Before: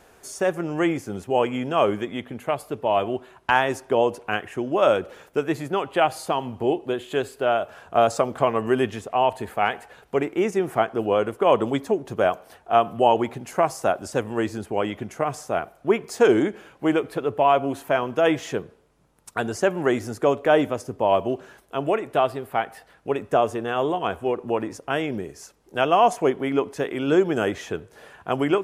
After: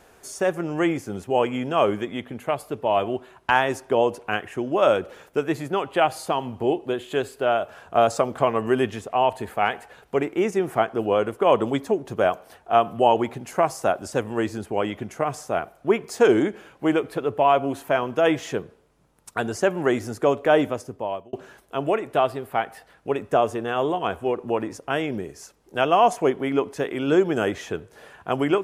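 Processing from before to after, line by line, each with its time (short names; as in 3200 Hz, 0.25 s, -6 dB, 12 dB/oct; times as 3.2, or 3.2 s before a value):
20.68–21.33 fade out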